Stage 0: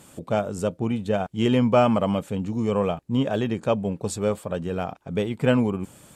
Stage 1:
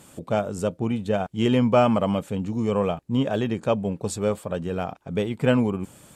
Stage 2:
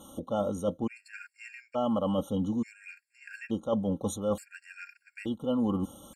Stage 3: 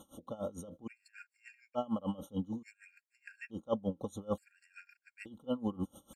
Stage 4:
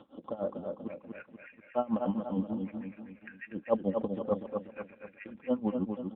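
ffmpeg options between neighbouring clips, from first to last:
-af anull
-af "aecho=1:1:3.7:0.63,areverse,acompressor=threshold=0.0562:ratio=12,areverse,afftfilt=real='re*gt(sin(2*PI*0.57*pts/sr)*(1-2*mod(floor(b*sr/1024/1400),2)),0)':imag='im*gt(sin(2*PI*0.57*pts/sr)*(1-2*mod(floor(b*sr/1024/1400),2)),0)':win_size=1024:overlap=0.75"
-af "aeval=exprs='val(0)*pow(10,-22*(0.5-0.5*cos(2*PI*6.7*n/s))/20)':c=same,volume=0.75"
-af "highpass=190,lowpass=2400,aecho=1:1:242|484|726|968|1210|1452:0.562|0.27|0.13|0.0622|0.0299|0.0143,volume=2" -ar 8000 -c:a libopencore_amrnb -b:a 7400

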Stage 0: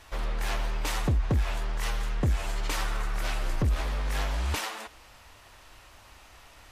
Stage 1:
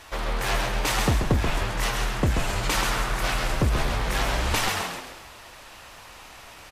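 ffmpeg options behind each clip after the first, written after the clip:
-filter_complex "[0:a]lowshelf=f=110:g=-8.5,aeval=exprs='0.126*(cos(1*acos(clip(val(0)/0.126,-1,1)))-cos(1*PI/2))+0.00126*(cos(6*acos(clip(val(0)/0.126,-1,1)))-cos(6*PI/2))':c=same,asplit=6[s0][s1][s2][s3][s4][s5];[s1]adelay=133,afreqshift=-82,volume=0.631[s6];[s2]adelay=266,afreqshift=-164,volume=0.272[s7];[s3]adelay=399,afreqshift=-246,volume=0.116[s8];[s4]adelay=532,afreqshift=-328,volume=0.0501[s9];[s5]adelay=665,afreqshift=-410,volume=0.0216[s10];[s0][s6][s7][s8][s9][s10]amix=inputs=6:normalize=0,volume=2.24"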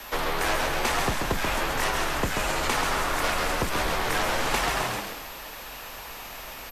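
-filter_complex "[0:a]aeval=exprs='val(0)+0.00316*sin(2*PI*13000*n/s)':c=same,acrossover=split=250|900|2200|4900[s0][s1][s2][s3][s4];[s0]acompressor=threshold=0.0158:ratio=4[s5];[s1]acompressor=threshold=0.0178:ratio=4[s6];[s2]acompressor=threshold=0.0224:ratio=4[s7];[s3]acompressor=threshold=0.00794:ratio=4[s8];[s4]acompressor=threshold=0.00891:ratio=4[s9];[s5][s6][s7][s8][s9]amix=inputs=5:normalize=0,afreqshift=-57,volume=1.78"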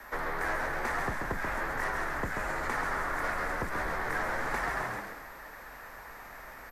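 -filter_complex "[0:a]highshelf=f=2300:t=q:w=3:g=-7.5,asplit=2[s0][s1];[s1]asoftclip=type=tanh:threshold=0.0473,volume=0.266[s2];[s0][s2]amix=inputs=2:normalize=0,volume=0.355"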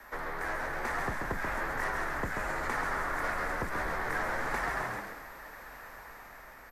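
-af "dynaudnorm=f=180:g=9:m=1.41,volume=0.668"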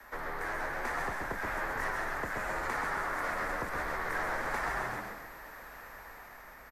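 -filter_complex "[0:a]asplit=2[s0][s1];[s1]adelay=122.4,volume=0.447,highshelf=f=4000:g=-2.76[s2];[s0][s2]amix=inputs=2:normalize=0,acrossover=split=360|580|2000[s3][s4][s5][s6];[s3]alimiter=level_in=3.16:limit=0.0631:level=0:latency=1:release=270,volume=0.316[s7];[s7][s4][s5][s6]amix=inputs=4:normalize=0,volume=0.841"

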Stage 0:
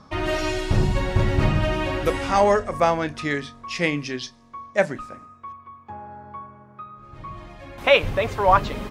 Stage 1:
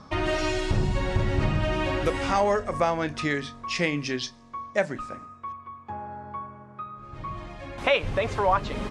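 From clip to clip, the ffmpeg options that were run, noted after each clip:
-af "lowpass=f=9700:w=0.5412,lowpass=f=9700:w=1.3066,acompressor=threshold=0.0501:ratio=2,volume=1.19"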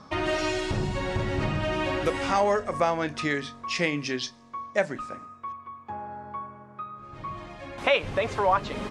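-af "lowshelf=f=86:g=-10.5"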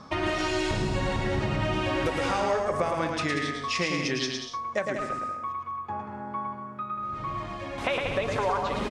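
-filter_complex "[0:a]acompressor=threshold=0.0447:ratio=6,asplit=2[s0][s1];[s1]aecho=0:1:110|187|240.9|278.6|305:0.631|0.398|0.251|0.158|0.1[s2];[s0][s2]amix=inputs=2:normalize=0,volume=1.26"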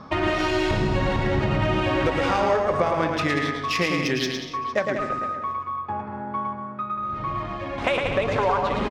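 -af "aecho=1:1:457:0.15,adynamicsmooth=sensitivity=2.5:basefreq=4000,volume=1.78"

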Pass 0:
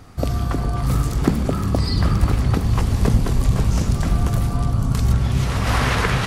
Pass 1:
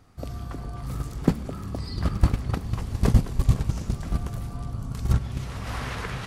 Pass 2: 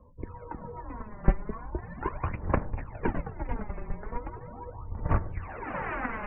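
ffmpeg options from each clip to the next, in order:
-af "agate=range=0.224:threshold=0.2:ratio=16:detection=peak"
-af "aphaser=in_gain=1:out_gain=1:delay=5:decay=0.65:speed=0.39:type=sinusoidal,highpass=f=180:t=q:w=0.5412,highpass=f=180:t=q:w=1.307,lowpass=f=2500:t=q:w=0.5176,lowpass=f=2500:t=q:w=0.7071,lowpass=f=2500:t=q:w=1.932,afreqshift=-220,afftdn=nr=29:nf=-51"

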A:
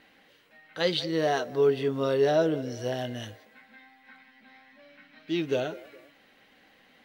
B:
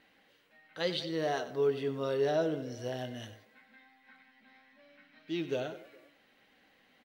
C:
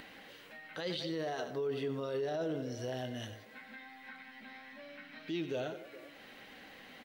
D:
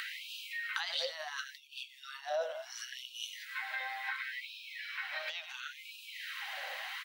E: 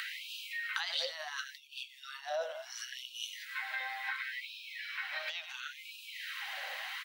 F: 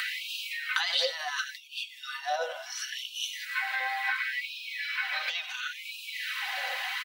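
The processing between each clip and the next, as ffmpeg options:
-af "aecho=1:1:94:0.211,volume=0.473"
-filter_complex "[0:a]asplit=2[s0][s1];[s1]acompressor=mode=upward:threshold=0.02:ratio=2.5,volume=1.26[s2];[s0][s2]amix=inputs=2:normalize=0,alimiter=limit=0.0794:level=0:latency=1:release=12,volume=0.447"
-af "acompressor=threshold=0.00708:ratio=5,afftfilt=real='re*gte(b*sr/1024,500*pow(2400/500,0.5+0.5*sin(2*PI*0.71*pts/sr)))':imag='im*gte(b*sr/1024,500*pow(2400/500,0.5+0.5*sin(2*PI*0.71*pts/sr)))':win_size=1024:overlap=0.75,volume=4.47"
-af "lowshelf=f=390:g=-9,volume=1.12"
-af "aecho=1:1:4:0.71,volume=2"

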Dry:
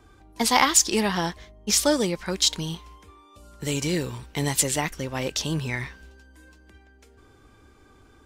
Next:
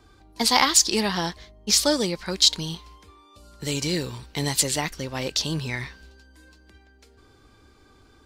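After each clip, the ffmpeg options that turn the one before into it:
-af "equalizer=f=4400:w=2.5:g=8.5,volume=0.891"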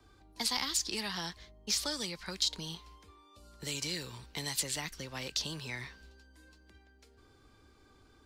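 -filter_complex "[0:a]acrossover=split=180|410|1000|3200[s0][s1][s2][s3][s4];[s0]acompressor=threshold=0.00891:ratio=4[s5];[s1]acompressor=threshold=0.00708:ratio=4[s6];[s2]acompressor=threshold=0.00708:ratio=4[s7];[s3]acompressor=threshold=0.0224:ratio=4[s8];[s4]acompressor=threshold=0.0631:ratio=4[s9];[s5][s6][s7][s8][s9]amix=inputs=5:normalize=0,volume=0.447"

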